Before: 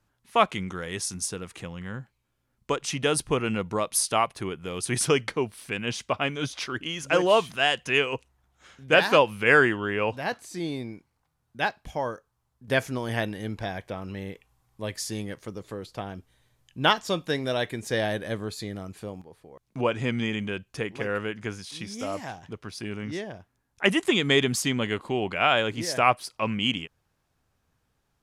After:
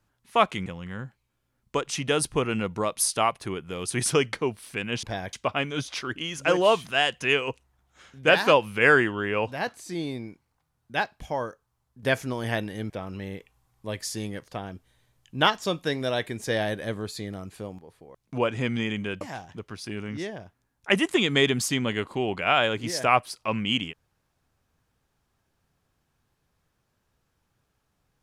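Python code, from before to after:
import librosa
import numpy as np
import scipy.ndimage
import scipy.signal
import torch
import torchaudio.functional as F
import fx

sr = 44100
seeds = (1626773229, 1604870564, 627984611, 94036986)

y = fx.edit(x, sr, fx.cut(start_s=0.66, length_s=0.95),
    fx.move(start_s=13.55, length_s=0.3, to_s=5.98),
    fx.cut(start_s=15.43, length_s=0.48),
    fx.cut(start_s=20.64, length_s=1.51), tone=tone)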